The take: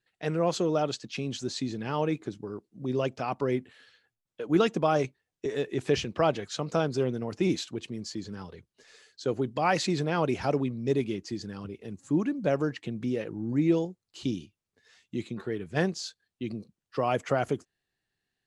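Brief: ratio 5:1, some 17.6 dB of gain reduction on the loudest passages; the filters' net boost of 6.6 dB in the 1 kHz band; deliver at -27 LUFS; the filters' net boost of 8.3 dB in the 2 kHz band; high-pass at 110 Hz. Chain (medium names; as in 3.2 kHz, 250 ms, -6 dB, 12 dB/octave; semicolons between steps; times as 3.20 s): high-pass 110 Hz; peaking EQ 1 kHz +7 dB; peaking EQ 2 kHz +8.5 dB; compression 5:1, threshold -36 dBFS; trim +13 dB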